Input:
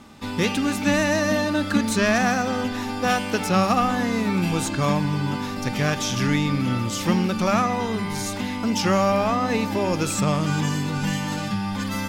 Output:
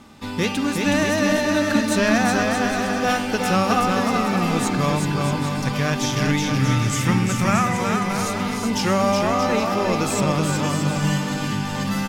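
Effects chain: 6.59–7.79 graphic EQ 125/250/500/2000/4000/8000 Hz +7/-4/-4/+6/-7/+7 dB; bouncing-ball echo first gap 0.37 s, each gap 0.7×, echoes 5

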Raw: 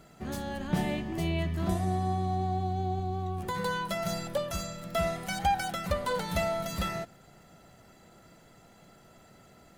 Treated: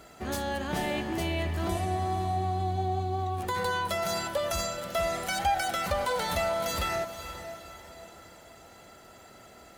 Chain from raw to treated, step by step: HPF 43 Hz; bell 160 Hz -11.5 dB 1.2 oct; in parallel at -2.5 dB: negative-ratio compressor -37 dBFS; on the sum: diffused feedback echo 0.483 s, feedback 41%, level -10.5 dB

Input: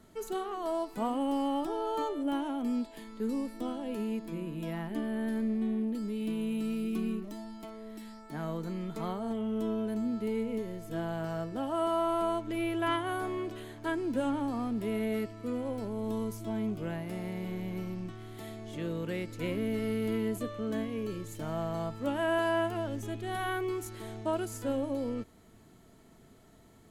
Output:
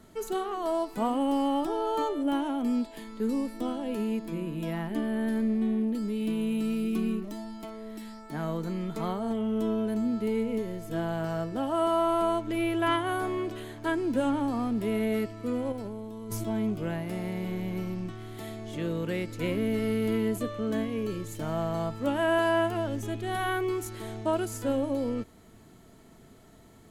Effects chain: 15.72–16.44 negative-ratio compressor -41 dBFS, ratio -1; gain +4 dB

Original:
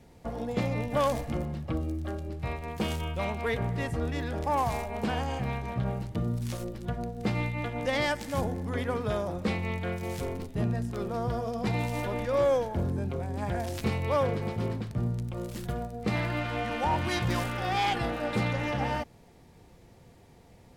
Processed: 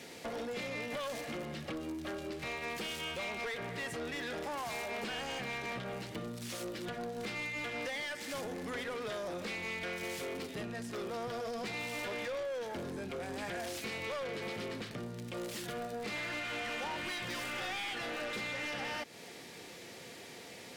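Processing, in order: HPF 390 Hz 6 dB/oct; bell 890 Hz -12 dB 1.4 oct; compressor 6:1, threshold -46 dBFS, peak gain reduction 16 dB; overdrive pedal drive 25 dB, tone 4800 Hz, clips at -31.5 dBFS; gain +1 dB

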